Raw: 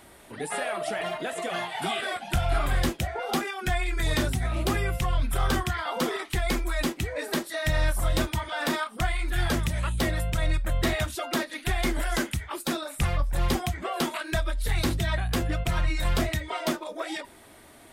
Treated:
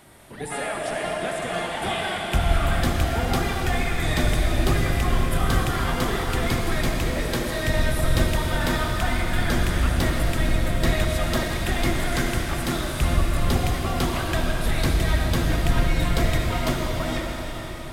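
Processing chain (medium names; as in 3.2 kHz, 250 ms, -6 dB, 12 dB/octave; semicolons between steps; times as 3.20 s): octave divider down 1 oct, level 0 dB; reverberation RT60 5.3 s, pre-delay 53 ms, DRR -1 dB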